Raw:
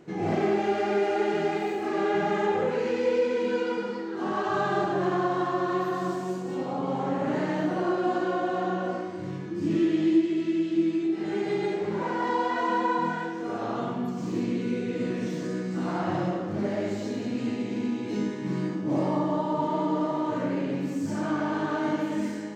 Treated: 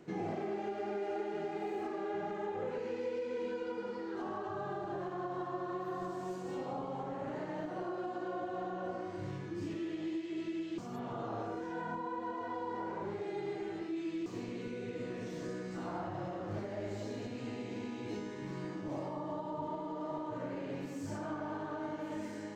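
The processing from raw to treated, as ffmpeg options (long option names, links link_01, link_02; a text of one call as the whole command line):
ffmpeg -i in.wav -filter_complex "[0:a]asplit=3[link_01][link_02][link_03];[link_01]atrim=end=10.782[link_04];[link_02]atrim=start=10.778:end=14.262,asetpts=PTS-STARTPTS,areverse[link_05];[link_03]atrim=start=14.258[link_06];[link_04][link_05]acrossfade=duration=0.004:curve1=hsin:curve2=hsin[link_07];[link_07][link_06]acrossfade=duration=0.004:curve1=hsin:curve2=hsin,acrossover=split=430|1100[link_08][link_09][link_10];[link_08]acompressor=threshold=-33dB:ratio=4[link_11];[link_09]acompressor=threshold=-34dB:ratio=4[link_12];[link_10]acompressor=threshold=-48dB:ratio=4[link_13];[link_11][link_12][link_13]amix=inputs=3:normalize=0,alimiter=level_in=0.5dB:limit=-24dB:level=0:latency=1:release=281,volume=-0.5dB,asubboost=boost=11:cutoff=57,volume=-4dB" out.wav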